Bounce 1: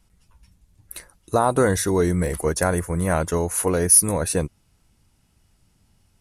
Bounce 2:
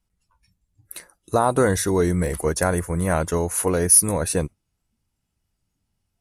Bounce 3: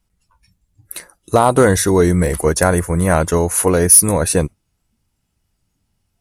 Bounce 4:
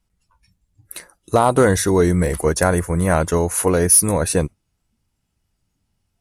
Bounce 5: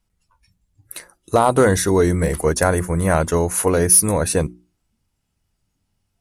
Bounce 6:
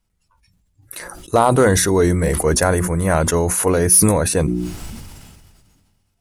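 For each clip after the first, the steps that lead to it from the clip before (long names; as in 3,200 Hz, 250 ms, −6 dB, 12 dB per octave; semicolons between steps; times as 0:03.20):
noise reduction from a noise print of the clip's start 14 dB
gain into a clipping stage and back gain 9.5 dB; level +7 dB
high-shelf EQ 12,000 Hz −5 dB; level −2.5 dB
mains-hum notches 60/120/180/240/300/360 Hz
level that may fall only so fast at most 30 dB per second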